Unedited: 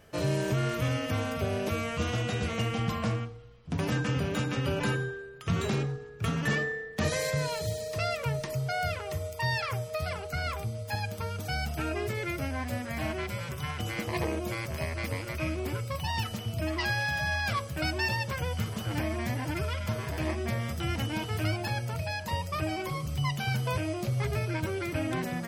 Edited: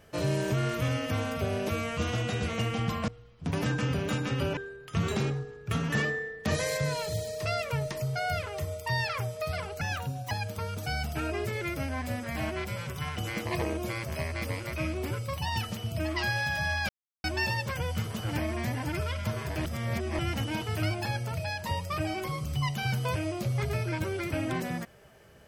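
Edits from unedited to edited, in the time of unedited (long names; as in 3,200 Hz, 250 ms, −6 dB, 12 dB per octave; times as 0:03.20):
0:03.08–0:03.34: remove
0:04.83–0:05.10: remove
0:10.34–0:10.93: play speed 118%
0:17.51–0:17.86: silence
0:20.27–0:20.81: reverse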